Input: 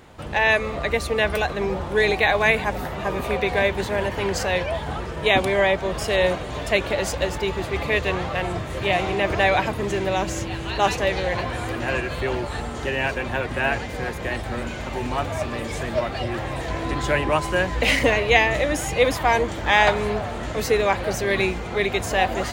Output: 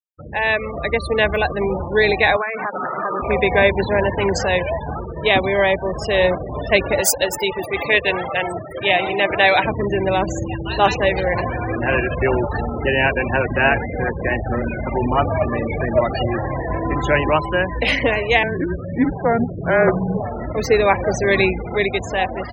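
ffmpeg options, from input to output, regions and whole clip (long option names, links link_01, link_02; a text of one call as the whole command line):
ffmpeg -i in.wav -filter_complex "[0:a]asettb=1/sr,asplit=3[link_01][link_02][link_03];[link_01]atrim=end=2.364[link_04];[link_02]atrim=start=2.36:end=3.22,asetpts=PTS-STARTPTS,afade=type=in:duration=0.004:curve=qsin,afade=type=out:start_time=0.856:duration=0.004:curve=qsin,equalizer=frequency=1300:width_type=o:width=0.44:gain=13,acompressor=threshold=-21dB:ratio=20:attack=3.2:release=140:knee=1:detection=peak,highpass=220,lowpass=2400[link_05];[link_03]atrim=start=3.216[link_06];[link_04][link_05]acrossfade=duration=0.004:curve1=hsin:curve2=qsin[link_07];[link_07][link_06]acrossfade=duration=0.004:curve1=qsin:curve2=hsin,asettb=1/sr,asplit=3[link_08][link_09][link_10];[link_08]atrim=end=7.014[link_11];[link_09]atrim=start=7.01:end=9.64,asetpts=PTS-STARTPTS,afade=type=in:duration=0.004:curve=qsin,afade=type=out:start_time=2.626:duration=0.004:curve=qsin,aemphasis=mode=production:type=bsi,bandreject=frequency=1100:width=13[link_12];[link_10]atrim=start=9.636[link_13];[link_11][link_12]acrossfade=duration=0.004:curve1=hsin:curve2=qsin[link_14];[link_14][link_13]acrossfade=duration=0.004:curve1=qsin:curve2=hsin,asettb=1/sr,asplit=3[link_15][link_16][link_17];[link_15]atrim=end=18.434[link_18];[link_16]atrim=start=18.43:end=20.2,asetpts=PTS-STARTPTS,afade=type=in:duration=0.004:curve=qsin,afade=type=out:start_time=1.766:duration=0.004:curve=qsin,lowpass=1500,afreqshift=-230[link_19];[link_17]atrim=start=20.196[link_20];[link_18][link_19]acrossfade=duration=0.004:curve1=hsin:curve2=qsin[link_21];[link_21][link_20]acrossfade=duration=0.004:curve1=qsin:curve2=hsin,highpass=48,afftfilt=real='re*gte(hypot(re,im),0.0562)':imag='im*gte(hypot(re,im),0.0562)':win_size=1024:overlap=0.75,dynaudnorm=framelen=200:gausssize=9:maxgain=11.5dB,volume=-1dB" out.wav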